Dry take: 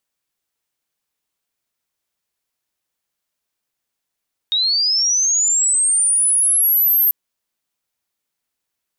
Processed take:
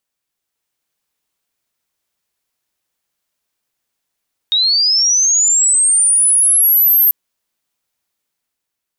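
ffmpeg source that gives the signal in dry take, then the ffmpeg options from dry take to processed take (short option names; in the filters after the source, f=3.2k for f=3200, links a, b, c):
-f lavfi -i "aevalsrc='pow(10,(-14.5+3*t/2.59)/20)*sin(2*PI*(3700*t+9300*t*t/(2*2.59)))':d=2.59:s=44100"
-af "dynaudnorm=f=100:g=13:m=4dB"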